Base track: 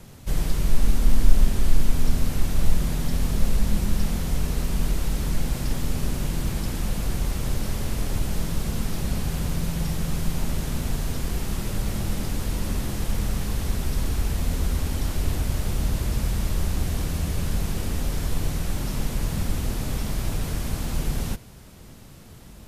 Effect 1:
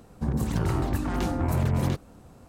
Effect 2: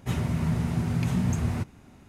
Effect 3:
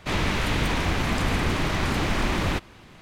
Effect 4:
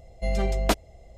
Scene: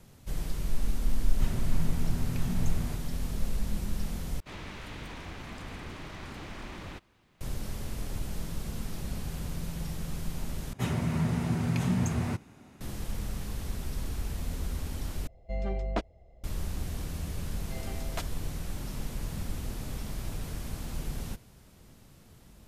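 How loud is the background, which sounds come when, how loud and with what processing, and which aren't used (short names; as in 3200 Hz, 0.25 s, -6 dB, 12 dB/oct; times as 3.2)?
base track -9.5 dB
1.33 add 2 -8.5 dB
4.4 replace with 3 -17.5 dB + bit-crush 11-bit
10.73 replace with 2 + HPF 120 Hz 6 dB/oct
15.27 replace with 4 -6.5 dB + tape spacing loss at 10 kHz 23 dB
17.48 add 4 -11.5 dB + Bessel high-pass 750 Hz
not used: 1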